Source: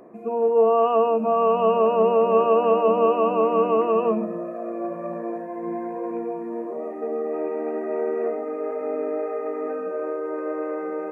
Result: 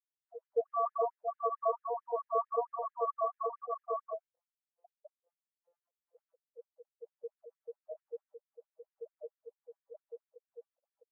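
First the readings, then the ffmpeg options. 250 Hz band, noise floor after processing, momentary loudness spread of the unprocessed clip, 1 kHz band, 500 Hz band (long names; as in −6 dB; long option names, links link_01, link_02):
below −40 dB, below −85 dBFS, 12 LU, −13.0 dB, −18.5 dB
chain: -af "bandreject=frequency=279:width_type=h:width=4,bandreject=frequency=558:width_type=h:width=4,afftfilt=real='re*gte(hypot(re,im),0.355)':imag='im*gte(hypot(re,im),0.355)':win_size=1024:overlap=0.75,flanger=delay=19.5:depth=5.1:speed=0.36,afftfilt=real='re*gte(b*sr/1024,450*pow(1700/450,0.5+0.5*sin(2*PI*4.5*pts/sr)))':imag='im*gte(b*sr/1024,450*pow(1700/450,0.5+0.5*sin(2*PI*4.5*pts/sr)))':win_size=1024:overlap=0.75,volume=-5dB"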